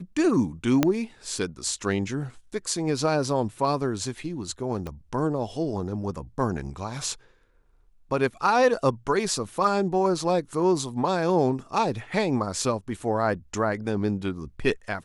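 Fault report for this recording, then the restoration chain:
0:00.83: click −6 dBFS
0:04.87: click −21 dBFS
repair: click removal

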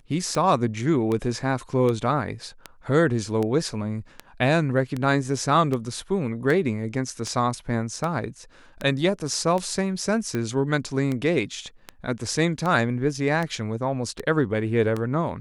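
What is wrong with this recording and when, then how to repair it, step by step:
scratch tick 78 rpm −15 dBFS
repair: click removal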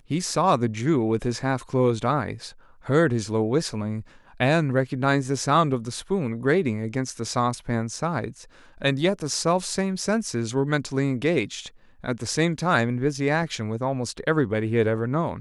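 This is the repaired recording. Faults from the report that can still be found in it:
none of them is left

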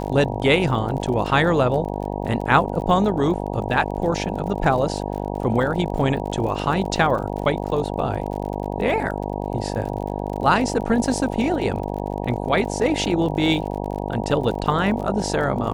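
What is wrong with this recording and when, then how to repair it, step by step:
mains buzz 50 Hz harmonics 19 −27 dBFS
surface crackle 43 per second −30 dBFS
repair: click removal
hum removal 50 Hz, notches 19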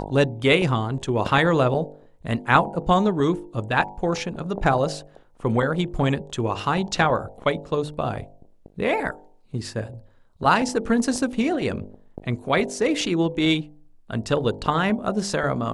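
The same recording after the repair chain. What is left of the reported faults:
none of them is left

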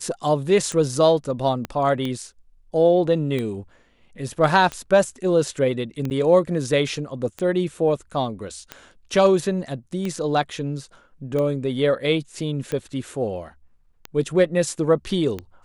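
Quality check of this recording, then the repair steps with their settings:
scratch tick 45 rpm −15 dBFS
0:01.65: click −15 dBFS
0:06.10–0:06.11: drop-out 9.3 ms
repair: click removal
repair the gap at 0:06.10, 9.3 ms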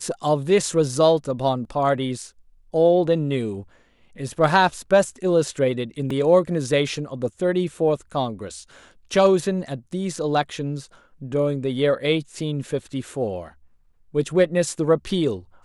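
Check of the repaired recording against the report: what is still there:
0:01.65: click

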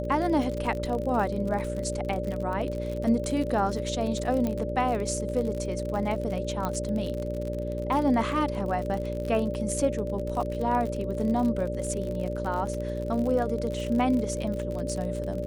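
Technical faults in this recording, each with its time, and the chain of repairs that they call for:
mains buzz 60 Hz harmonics 10 −33 dBFS
surface crackle 46 per second −31 dBFS
whistle 590 Hz −33 dBFS
0:04.47: click −17 dBFS
0:06.65: click −16 dBFS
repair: click removal
hum removal 60 Hz, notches 10
notch filter 590 Hz, Q 30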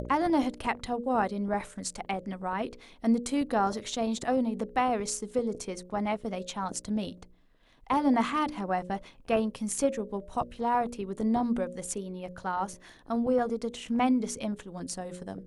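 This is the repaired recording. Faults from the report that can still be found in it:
none of them is left

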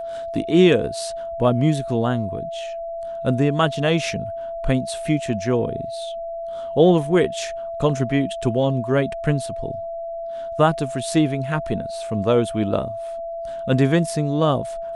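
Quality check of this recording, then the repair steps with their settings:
whistle 670 Hz −27 dBFS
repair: notch filter 670 Hz, Q 30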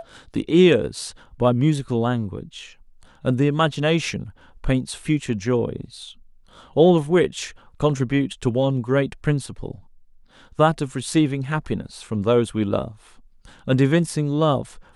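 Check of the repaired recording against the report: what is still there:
none of them is left

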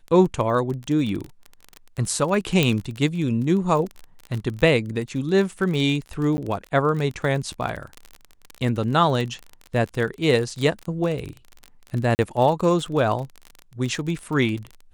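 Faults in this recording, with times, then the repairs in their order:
surface crackle 29 per second −27 dBFS
0:02.63: click −5 dBFS
0:06.37–0:06.38: drop-out 10 ms
0:12.15–0:12.19: drop-out 39 ms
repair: click removal
repair the gap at 0:06.37, 10 ms
repair the gap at 0:12.15, 39 ms

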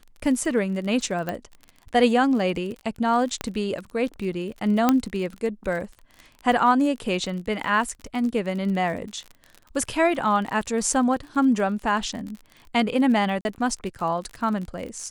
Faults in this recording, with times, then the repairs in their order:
surface crackle 38 per second −32 dBFS
0:01.29: click −15 dBFS
0:03.41: click −12 dBFS
0:04.89: click −5 dBFS
0:13.41–0:13.45: drop-out 41 ms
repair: click removal
repair the gap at 0:13.41, 41 ms

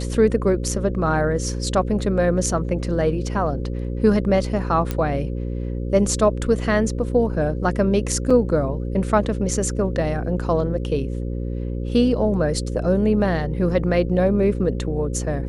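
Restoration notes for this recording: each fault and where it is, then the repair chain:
mains buzz 60 Hz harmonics 9 −26 dBFS
0:04.91: click −10 dBFS
0:08.30: drop-out 4.8 ms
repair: click removal
hum removal 60 Hz, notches 9
repair the gap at 0:08.30, 4.8 ms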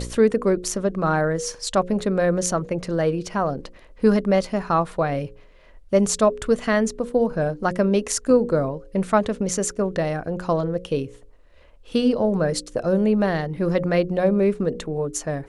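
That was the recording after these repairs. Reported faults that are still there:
none of them is left

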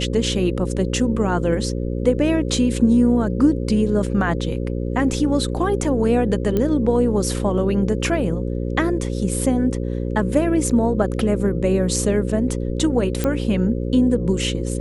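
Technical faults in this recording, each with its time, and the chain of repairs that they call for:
mains buzz 60 Hz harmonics 9 −24 dBFS
0:06.57: click −10 dBFS
0:13.24: click −8 dBFS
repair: click removal
hum removal 60 Hz, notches 9

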